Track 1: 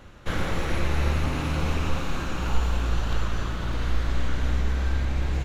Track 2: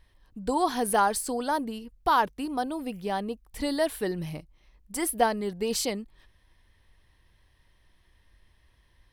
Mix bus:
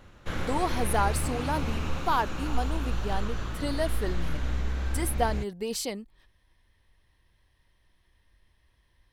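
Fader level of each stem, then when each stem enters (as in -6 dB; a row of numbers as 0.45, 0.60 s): -5.0, -3.5 dB; 0.00, 0.00 s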